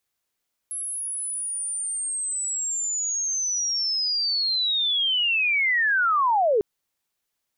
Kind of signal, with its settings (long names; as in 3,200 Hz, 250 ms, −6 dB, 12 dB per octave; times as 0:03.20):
glide linear 11,000 Hz → 390 Hz −28 dBFS → −17 dBFS 5.90 s